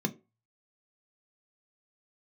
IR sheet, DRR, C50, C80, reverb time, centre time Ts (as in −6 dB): 7.0 dB, 19.5 dB, 23.5 dB, 0.30 s, 6 ms